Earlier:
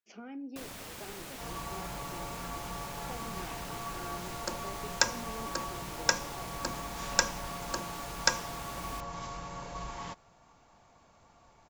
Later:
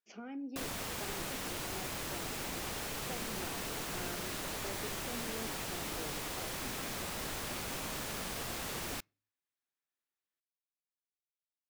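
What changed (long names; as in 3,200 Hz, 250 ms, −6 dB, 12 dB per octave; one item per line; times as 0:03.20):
first sound +5.0 dB
second sound: muted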